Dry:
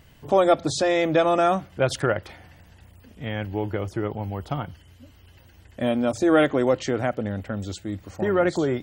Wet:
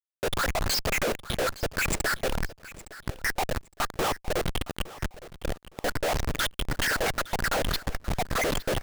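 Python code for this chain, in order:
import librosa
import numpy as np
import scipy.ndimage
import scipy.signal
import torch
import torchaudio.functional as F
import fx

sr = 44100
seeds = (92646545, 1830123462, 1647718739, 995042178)

y = fx.spec_dropout(x, sr, seeds[0], share_pct=79)
y = scipy.signal.sosfilt(scipy.signal.butter(4, 9200.0, 'lowpass', fs=sr, output='sos'), y)
y = fx.high_shelf(y, sr, hz=2100.0, db=-3.5)
y = fx.over_compress(y, sr, threshold_db=-30.0, ratio=-0.5)
y = fx.leveller(y, sr, passes=5)
y = fx.filter_lfo_highpass(y, sr, shape='square', hz=3.4, low_hz=540.0, high_hz=1600.0, q=7.6)
y = fx.level_steps(y, sr, step_db=21)
y = fx.whisperise(y, sr, seeds[1])
y = fx.leveller(y, sr, passes=2)
y = fx.schmitt(y, sr, flips_db=-28.0)
y = fx.echo_feedback(y, sr, ms=863, feedback_pct=26, wet_db=-17.5)
y = F.gain(torch.from_numpy(y), -3.5).numpy()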